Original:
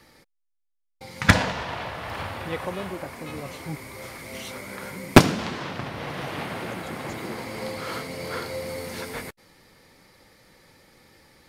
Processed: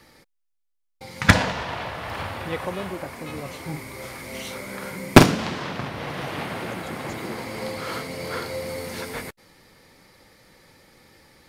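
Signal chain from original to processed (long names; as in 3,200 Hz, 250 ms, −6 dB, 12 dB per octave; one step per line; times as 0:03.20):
0:03.61–0:05.87: double-tracking delay 46 ms −8 dB
level +1.5 dB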